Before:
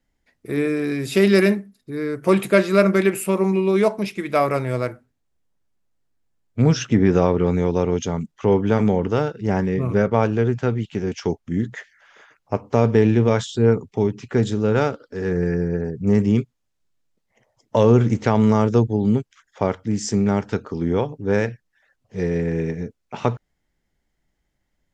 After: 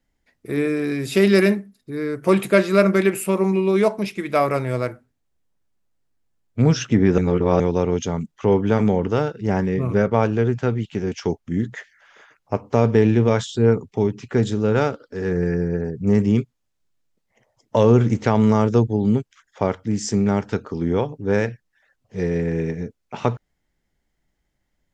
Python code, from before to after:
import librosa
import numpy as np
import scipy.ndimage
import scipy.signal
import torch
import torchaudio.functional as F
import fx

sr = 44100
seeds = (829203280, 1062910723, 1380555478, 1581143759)

y = fx.edit(x, sr, fx.reverse_span(start_s=7.18, length_s=0.42), tone=tone)